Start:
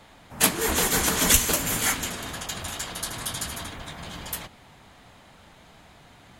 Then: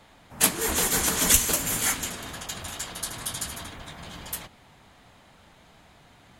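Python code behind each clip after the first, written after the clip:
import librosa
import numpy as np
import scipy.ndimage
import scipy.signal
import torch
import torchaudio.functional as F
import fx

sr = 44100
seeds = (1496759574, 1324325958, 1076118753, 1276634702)

y = fx.dynamic_eq(x, sr, hz=9100.0, q=0.71, threshold_db=-35.0, ratio=4.0, max_db=4)
y = F.gain(torch.from_numpy(y), -3.0).numpy()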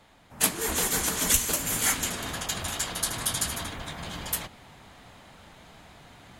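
y = fx.rider(x, sr, range_db=4, speed_s=0.5)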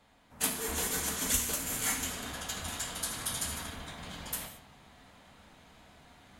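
y = fx.rev_gated(x, sr, seeds[0], gate_ms=250, shape='falling', drr_db=3.5)
y = F.gain(torch.from_numpy(y), -8.0).numpy()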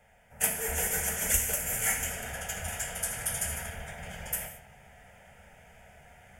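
y = fx.fixed_phaser(x, sr, hz=1100.0, stages=6)
y = F.gain(torch.from_numpy(y), 5.5).numpy()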